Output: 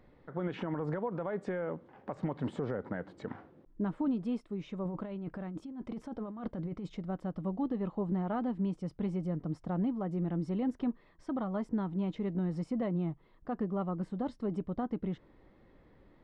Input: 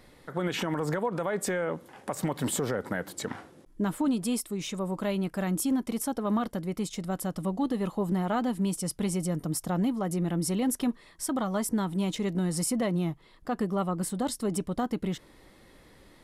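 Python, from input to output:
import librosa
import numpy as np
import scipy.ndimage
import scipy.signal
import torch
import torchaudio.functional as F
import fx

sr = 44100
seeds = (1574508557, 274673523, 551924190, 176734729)

y = fx.over_compress(x, sr, threshold_db=-34.0, ratio=-1.0, at=(4.85, 6.97))
y = fx.spacing_loss(y, sr, db_at_10k=41)
y = y * 10.0 ** (-3.5 / 20.0)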